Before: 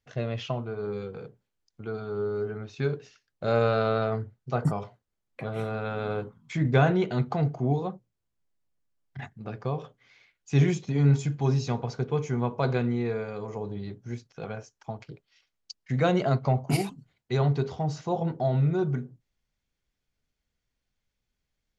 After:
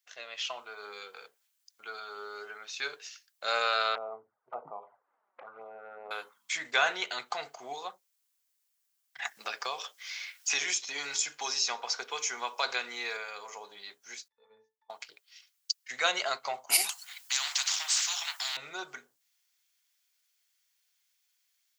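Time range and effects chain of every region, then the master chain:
3.95–6.11 LPF 1100 Hz 24 dB/oct + envelope flanger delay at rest 6.1 ms, full sweep at -26.5 dBFS + upward compressor, threshold -33 dBFS
9.25–13.17 HPF 140 Hz + bell 5400 Hz +5 dB 0.29 oct + three-band squash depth 70%
14.28–14.9 air absorption 110 m + octave resonator A, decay 0.22 s + mismatched tape noise reduction decoder only
16.89–18.57 steep high-pass 710 Hz 96 dB/oct + spectral compressor 4:1
whole clip: HPF 840 Hz 12 dB/oct; tilt +4.5 dB/oct; AGC gain up to 7 dB; gain -5.5 dB

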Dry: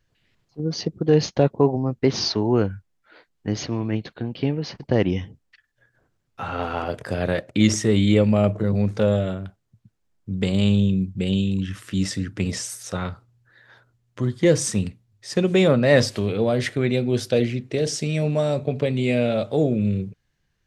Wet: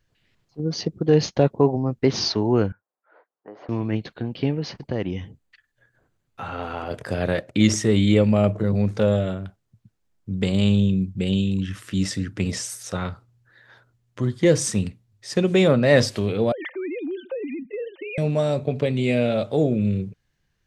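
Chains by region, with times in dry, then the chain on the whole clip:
2.72–3.69 compressor 2:1, threshold -27 dBFS + Butterworth band-pass 760 Hz, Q 0.93
4.83–6.91 notch 5400 Hz, Q 8.8 + compressor 1.5:1, threshold -32 dBFS
16.52–18.18 sine-wave speech + comb 3.3 ms, depth 40% + compressor, threshold -27 dBFS
whole clip: dry

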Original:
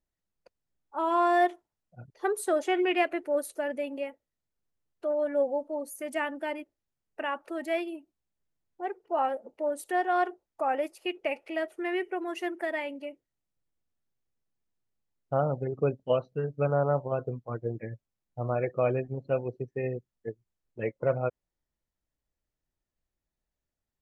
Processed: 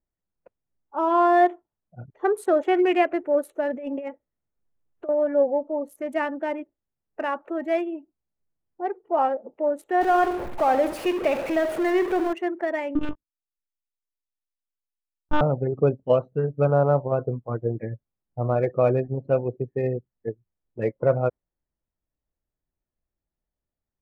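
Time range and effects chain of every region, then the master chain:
3.73–5.09 elliptic low-pass 7700 Hz + negative-ratio compressor -38 dBFS
10.01–12.33 zero-crossing step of -31.5 dBFS + feedback echo 68 ms, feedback 48%, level -11.5 dB
12.95–15.41 sample leveller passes 5 + fixed phaser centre 2100 Hz, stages 6 + monotone LPC vocoder at 8 kHz 300 Hz
whole clip: Wiener smoothing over 9 samples; spectral noise reduction 6 dB; high shelf 2400 Hz -11.5 dB; gain +7 dB

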